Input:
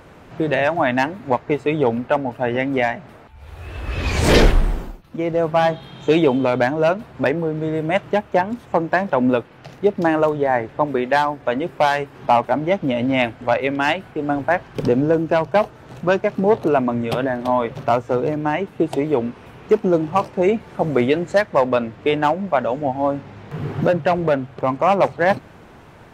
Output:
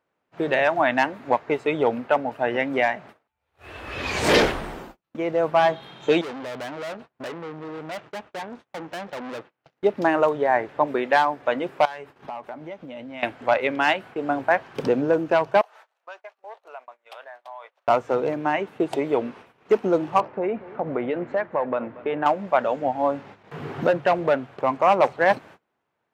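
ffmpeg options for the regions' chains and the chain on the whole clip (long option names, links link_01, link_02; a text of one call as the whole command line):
ffmpeg -i in.wav -filter_complex "[0:a]asettb=1/sr,asplit=3[link_01][link_02][link_03];[link_01]atrim=end=6.214[link_04];[link_02]atrim=start=6.21:end=9.77,asetpts=PTS-STARTPTS,afade=type=in:duration=0.004:curve=qsin,afade=type=out:start_time=3.556:duration=0.004:curve=qsin,lowpass=6700,aeval=exprs='(tanh(25.1*val(0)+0.75)-tanh(0.75))/25.1':channel_layout=same[link_05];[link_03]atrim=start=9.766[link_06];[link_04][link_05]acrossfade=duration=0.004:curve1=hsin:curve2=qsin[link_07];[link_07][link_06]acrossfade=duration=0.004:curve1=qsin:curve2=hsin,asettb=1/sr,asplit=3[link_08][link_09][link_10];[link_08]atrim=end=11.854[link_11];[link_09]atrim=start=11.85:end=13.23,asetpts=PTS-STARTPTS,afade=type=in:duration=0.004:curve=qsin,afade=type=out:start_time=1.376:duration=0.004:curve=qsin,lowshelf=frequency=64:gain=12,acompressor=threshold=-30dB:ratio=8:attack=3.2:release=140:knee=1:detection=peak,asplit=2[link_12][link_13];[link_13]adelay=12,volume=-13.5dB[link_14];[link_12][link_14]amix=inputs=2:normalize=0,atrim=end_sample=60858[link_15];[link_10]atrim=start=13.226[link_16];[link_11][link_15]acrossfade=duration=0.004:curve1=hsin:curve2=qsin[link_17];[link_17][link_16]acrossfade=duration=0.004:curve1=qsin:curve2=hsin,asettb=1/sr,asplit=3[link_18][link_19][link_20];[link_18]atrim=end=15.614[link_21];[link_19]atrim=start=15.61:end=17.88,asetpts=PTS-STARTPTS,afade=type=in:duration=0.004:curve=qsin,afade=type=out:start_time=2.266:duration=0.004:curve=qsin,highpass=frequency=640:width=0.5412,highpass=frequency=640:width=1.3066,acompressor=threshold=-43dB:ratio=2.5:attack=3.2:release=140:knee=1:detection=peak[link_22];[link_20]atrim=start=17.876[link_23];[link_21][link_22]acrossfade=duration=0.004:curve1=hsin:curve2=qsin[link_24];[link_24][link_23]acrossfade=duration=0.004:curve1=qsin:curve2=hsin,asettb=1/sr,asplit=3[link_25][link_26][link_27];[link_25]atrim=end=20.204[link_28];[link_26]atrim=start=20.2:end=22.26,asetpts=PTS-STARTPTS,afade=type=in:duration=0.004:curve=qsin,afade=type=out:start_time=2.056:duration=0.004:curve=qsin,lowpass=1800,acompressor=threshold=-18dB:ratio=3:attack=3.2:release=140:knee=1:detection=peak,aecho=1:1:234:0.119,atrim=end_sample=90846[link_29];[link_27]atrim=start=22.256[link_30];[link_28][link_29]acrossfade=duration=0.004:curve1=hsin:curve2=qsin[link_31];[link_31][link_30]acrossfade=duration=0.004:curve1=qsin:curve2=hsin,highpass=frequency=470:poles=1,agate=range=-29dB:threshold=-42dB:ratio=16:detection=peak,highshelf=frequency=4900:gain=-5.5" out.wav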